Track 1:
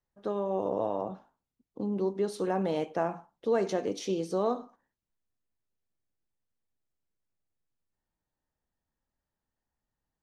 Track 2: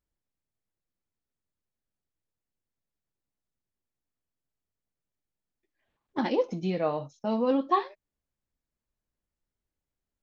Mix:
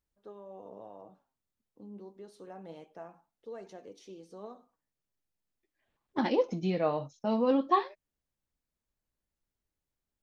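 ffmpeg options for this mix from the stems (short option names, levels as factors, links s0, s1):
-filter_complex "[0:a]flanger=delay=1:depth=9.3:regen=61:speed=0.27:shape=triangular,volume=0.224[s0];[1:a]volume=0.891[s1];[s0][s1]amix=inputs=2:normalize=0"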